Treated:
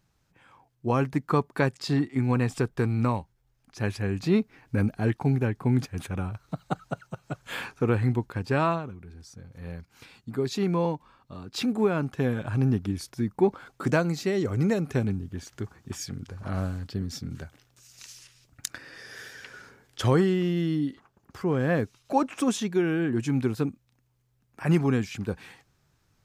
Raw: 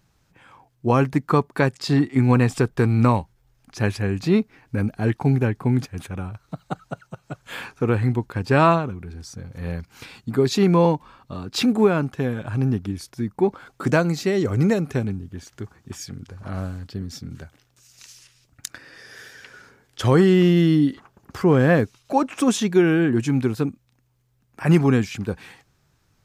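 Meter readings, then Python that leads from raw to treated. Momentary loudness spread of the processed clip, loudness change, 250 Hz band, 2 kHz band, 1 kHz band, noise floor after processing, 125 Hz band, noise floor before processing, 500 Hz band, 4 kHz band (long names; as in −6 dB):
16 LU, −7.0 dB, −6.5 dB, −6.0 dB, −6.5 dB, −70 dBFS, −5.5 dB, −65 dBFS, −6.5 dB, −6.0 dB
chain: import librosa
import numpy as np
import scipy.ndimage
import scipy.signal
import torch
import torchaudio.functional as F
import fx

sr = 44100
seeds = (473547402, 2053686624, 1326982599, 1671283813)

y = fx.rider(x, sr, range_db=5, speed_s=0.5)
y = F.gain(torch.from_numpy(y), -5.5).numpy()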